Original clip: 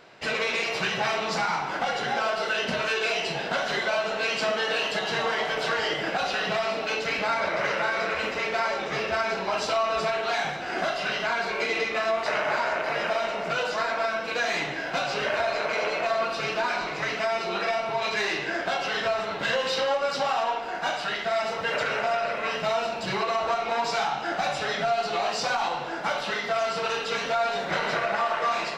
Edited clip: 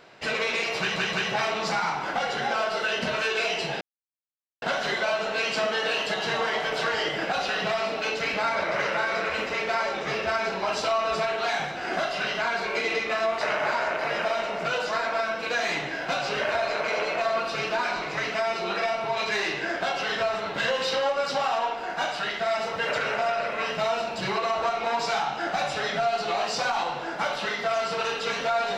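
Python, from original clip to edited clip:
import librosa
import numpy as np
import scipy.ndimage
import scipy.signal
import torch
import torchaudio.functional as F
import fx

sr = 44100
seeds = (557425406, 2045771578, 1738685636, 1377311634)

y = fx.edit(x, sr, fx.stutter(start_s=0.79, slice_s=0.17, count=3),
    fx.insert_silence(at_s=3.47, length_s=0.81), tone=tone)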